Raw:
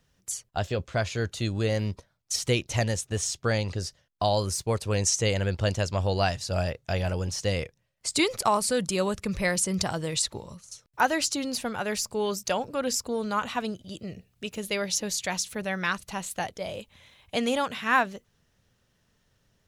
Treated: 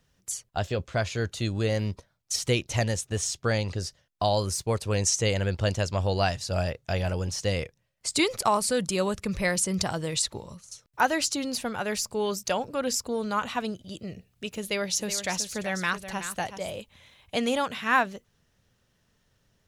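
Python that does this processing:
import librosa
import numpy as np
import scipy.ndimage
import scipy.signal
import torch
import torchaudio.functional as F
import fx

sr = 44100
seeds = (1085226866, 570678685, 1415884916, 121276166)

y = fx.echo_single(x, sr, ms=375, db=-10.5, at=(14.62, 16.75))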